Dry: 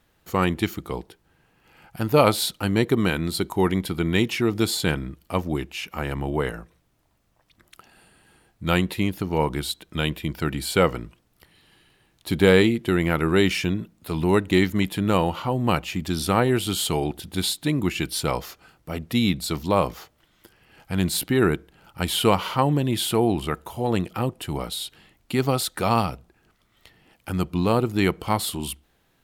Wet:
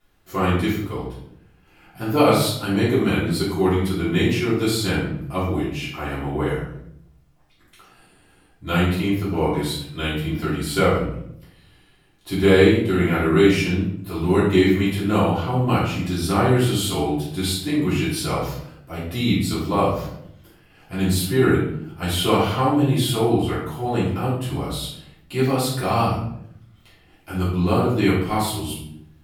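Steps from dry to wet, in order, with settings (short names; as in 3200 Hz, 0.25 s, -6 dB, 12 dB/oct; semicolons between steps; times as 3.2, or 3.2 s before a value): shoebox room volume 150 m³, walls mixed, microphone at 3.2 m; gain -9.5 dB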